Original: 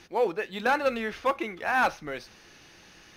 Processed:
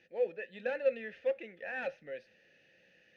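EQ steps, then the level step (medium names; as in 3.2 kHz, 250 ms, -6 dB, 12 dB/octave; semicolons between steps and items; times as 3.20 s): vowel filter e; resonant low shelf 260 Hz +9 dB, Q 1.5; 0.0 dB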